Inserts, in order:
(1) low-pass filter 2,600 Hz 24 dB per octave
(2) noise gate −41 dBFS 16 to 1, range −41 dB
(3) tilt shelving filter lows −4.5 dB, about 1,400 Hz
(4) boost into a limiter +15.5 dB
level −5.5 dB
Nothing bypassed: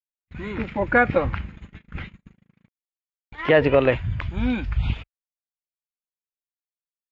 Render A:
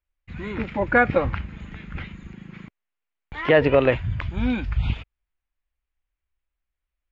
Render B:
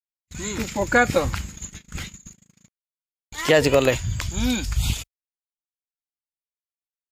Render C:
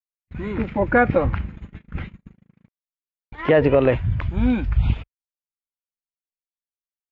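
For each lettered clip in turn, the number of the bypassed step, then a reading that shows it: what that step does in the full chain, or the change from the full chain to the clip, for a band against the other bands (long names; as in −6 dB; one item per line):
2, change in momentary loudness spread +1 LU
1, 4 kHz band +9.0 dB
3, 4 kHz band −5.5 dB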